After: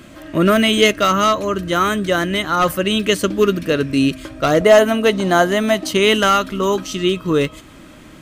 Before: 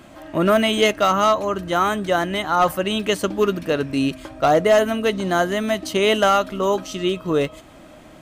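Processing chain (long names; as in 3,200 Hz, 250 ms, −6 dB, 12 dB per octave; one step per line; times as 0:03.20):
parametric band 800 Hz −12 dB 0.66 octaves, from 0:04.61 69 Hz, from 0:05.91 690 Hz
level +5.5 dB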